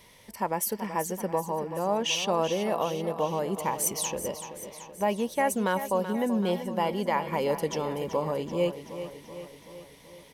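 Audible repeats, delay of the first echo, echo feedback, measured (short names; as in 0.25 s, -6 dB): 6, 0.381 s, 59%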